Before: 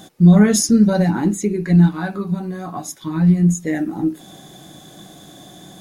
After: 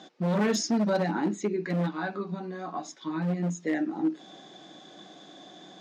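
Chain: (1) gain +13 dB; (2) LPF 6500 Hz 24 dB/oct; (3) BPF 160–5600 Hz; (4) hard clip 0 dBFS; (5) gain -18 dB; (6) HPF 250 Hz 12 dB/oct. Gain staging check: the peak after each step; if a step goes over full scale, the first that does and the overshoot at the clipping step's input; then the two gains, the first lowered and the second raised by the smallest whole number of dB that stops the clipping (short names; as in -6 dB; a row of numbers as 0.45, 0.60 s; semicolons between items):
+10.5, +10.5, +10.0, 0.0, -18.0, -13.5 dBFS; step 1, 10.0 dB; step 1 +3 dB, step 5 -8 dB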